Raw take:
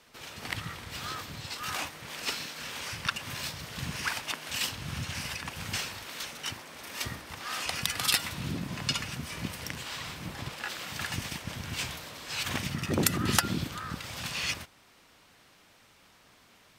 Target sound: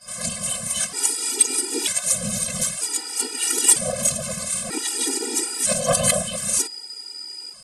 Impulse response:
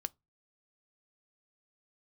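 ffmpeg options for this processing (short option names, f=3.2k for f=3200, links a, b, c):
-filter_complex "[0:a]aeval=exprs='val(0)+0.00501*sin(2*PI*2100*n/s)':c=same,equalizer=f=2k:t=o:w=1.7:g=-5.5,asplit=2[a][b];[b]lowpass=f=3.7k:t=q:w=7.9[c];[1:a]atrim=start_sample=2205,adelay=40[d];[c][d]afir=irnorm=-1:irlink=0,volume=7.5dB[e];[a][e]amix=inputs=2:normalize=0,atempo=0.94,aresample=11025,aeval=exprs='2.37*sin(PI/2*3.55*val(0)/2.37)':c=same,aresample=44100,asetrate=103194,aresample=44100,afftfilt=real='hypot(re,im)*cos(2*PI*random(0))':imag='hypot(re,im)*sin(2*PI*random(1))':win_size=512:overlap=0.75,afftfilt=real='re*gt(sin(2*PI*0.53*pts/sr)*(1-2*mod(floor(b*sr/1024/250),2)),0)':imag='im*gt(sin(2*PI*0.53*pts/sr)*(1-2*mod(floor(b*sr/1024/250),2)),0)':win_size=1024:overlap=0.75,volume=-3.5dB"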